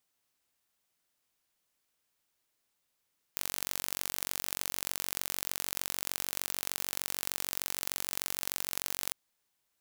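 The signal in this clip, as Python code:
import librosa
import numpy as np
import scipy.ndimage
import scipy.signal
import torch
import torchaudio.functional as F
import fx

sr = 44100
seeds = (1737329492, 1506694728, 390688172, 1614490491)

y = fx.impulse_train(sr, length_s=5.75, per_s=46.6, accent_every=2, level_db=-5.0)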